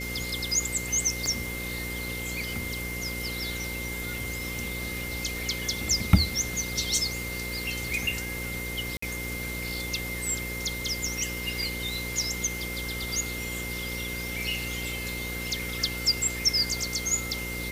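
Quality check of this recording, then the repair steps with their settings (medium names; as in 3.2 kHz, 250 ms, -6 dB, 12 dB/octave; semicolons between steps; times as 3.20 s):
buzz 60 Hz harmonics 9 -37 dBFS
crackle 34 per s -39 dBFS
whine 2.1 kHz -35 dBFS
1.26 s: pop -15 dBFS
8.97–9.02 s: dropout 54 ms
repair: de-click; de-hum 60 Hz, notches 9; band-stop 2.1 kHz, Q 30; interpolate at 8.97 s, 54 ms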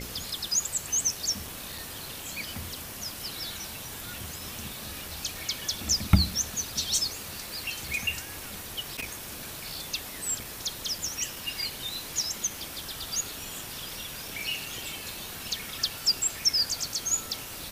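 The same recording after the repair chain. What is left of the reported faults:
nothing left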